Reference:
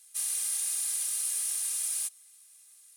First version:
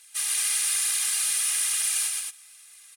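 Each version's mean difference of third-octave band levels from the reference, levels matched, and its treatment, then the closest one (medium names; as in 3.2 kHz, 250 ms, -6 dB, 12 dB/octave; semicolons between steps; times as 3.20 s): 4.0 dB: peaking EQ 2 kHz +13.5 dB 2.8 oct; phaser 1.1 Hz, delay 4.1 ms, feedback 34%; on a send: loudspeakers at several distances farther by 42 m -4 dB, 76 m -5 dB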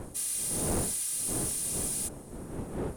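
14.0 dB: wind noise 360 Hz -35 dBFS; saturation -24 dBFS, distortion -13 dB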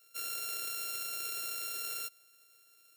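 7.5 dB: sorted samples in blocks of 32 samples; treble shelf 8.8 kHz +10 dB; static phaser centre 410 Hz, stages 4; trim -8.5 dB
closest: first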